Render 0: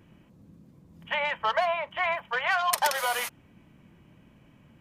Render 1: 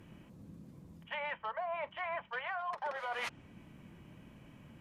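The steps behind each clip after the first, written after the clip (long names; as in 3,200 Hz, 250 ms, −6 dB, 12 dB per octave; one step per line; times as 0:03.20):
treble cut that deepens with the level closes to 1,300 Hz, closed at −21.5 dBFS
parametric band 11,000 Hz +2.5 dB 0.97 octaves
reversed playback
downward compressor 16 to 1, threshold −36 dBFS, peak gain reduction 15.5 dB
reversed playback
level +1 dB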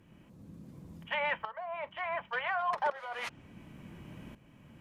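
shaped tremolo saw up 0.69 Hz, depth 80%
level +8 dB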